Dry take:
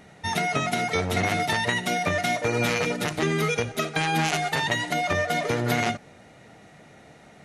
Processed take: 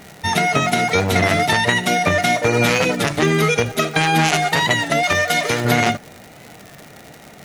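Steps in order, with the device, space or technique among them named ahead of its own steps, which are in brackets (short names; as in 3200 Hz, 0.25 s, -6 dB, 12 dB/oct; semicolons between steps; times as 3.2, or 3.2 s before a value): warped LP (record warp 33 1/3 rpm, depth 100 cents; crackle 140/s -34 dBFS; white noise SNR 41 dB); 5.03–5.65 tilt shelf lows -5 dB, about 1400 Hz; gain +8 dB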